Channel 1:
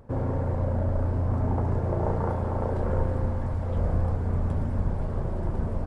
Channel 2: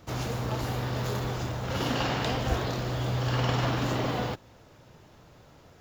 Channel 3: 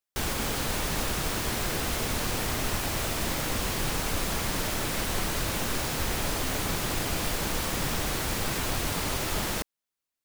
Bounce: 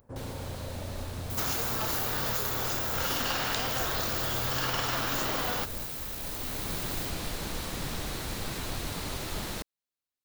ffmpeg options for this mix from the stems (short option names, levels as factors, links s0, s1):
-filter_complex "[0:a]lowshelf=f=120:g=11.5,volume=0.316[s0];[1:a]equalizer=f=1400:t=o:w=0.77:g=5.5,acrusher=bits=8:mix=0:aa=0.000001,adelay=1300,volume=1.33[s1];[2:a]equalizer=f=4000:w=4.1:g=5,volume=0.422,afade=t=in:st=6.13:d=0.66:silence=0.398107[s2];[s0][s1]amix=inputs=2:normalize=0,aemphasis=mode=production:type=riaa,acompressor=threshold=0.0398:ratio=5,volume=1[s3];[s2][s3]amix=inputs=2:normalize=0,lowshelf=f=420:g=3.5"